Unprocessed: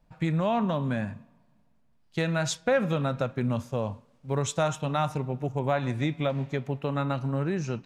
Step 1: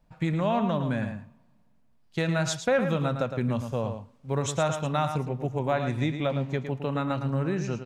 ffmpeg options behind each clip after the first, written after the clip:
-filter_complex "[0:a]asplit=2[s0][s1];[s1]adelay=110.8,volume=0.398,highshelf=f=4000:g=-2.49[s2];[s0][s2]amix=inputs=2:normalize=0"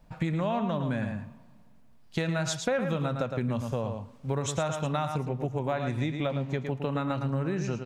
-af "acompressor=threshold=0.0141:ratio=3,volume=2.37"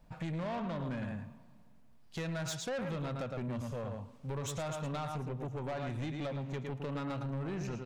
-af "asoftclip=type=tanh:threshold=0.0316,volume=0.668"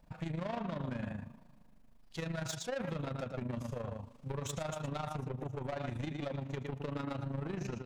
-af "tremolo=f=26:d=0.71,volume=1.26"

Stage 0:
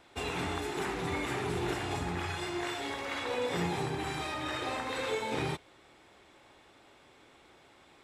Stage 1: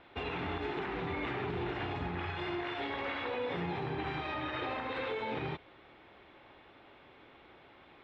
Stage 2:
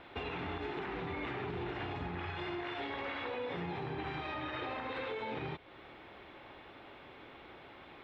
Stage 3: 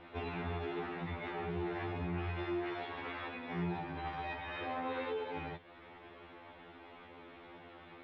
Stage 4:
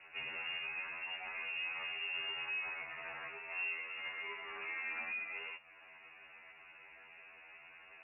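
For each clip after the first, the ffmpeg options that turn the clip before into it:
-af "lowpass=f=3400:w=0.5412,lowpass=f=3400:w=1.3066,alimiter=level_in=2:limit=0.0631:level=0:latency=1:release=77,volume=0.501,volume=1.26"
-af "acompressor=threshold=0.00447:ratio=2,volume=1.68"
-af "aemphasis=mode=reproduction:type=50fm,afftfilt=real='re*2*eq(mod(b,4),0)':imag='im*2*eq(mod(b,4),0)':win_size=2048:overlap=0.75,volume=1.19"
-af "lowpass=f=2500:t=q:w=0.5098,lowpass=f=2500:t=q:w=0.6013,lowpass=f=2500:t=q:w=0.9,lowpass=f=2500:t=q:w=2.563,afreqshift=-2900,volume=0.708"

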